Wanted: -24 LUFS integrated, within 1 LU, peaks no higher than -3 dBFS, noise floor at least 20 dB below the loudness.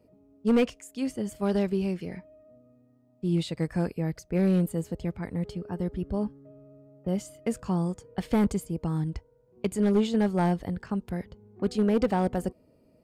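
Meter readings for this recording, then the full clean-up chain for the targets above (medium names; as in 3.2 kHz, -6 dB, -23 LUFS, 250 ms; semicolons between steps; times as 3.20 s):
clipped samples 0.7%; clipping level -16.5 dBFS; loudness -29.0 LUFS; peak level -16.5 dBFS; loudness target -24.0 LUFS
-> clip repair -16.5 dBFS; trim +5 dB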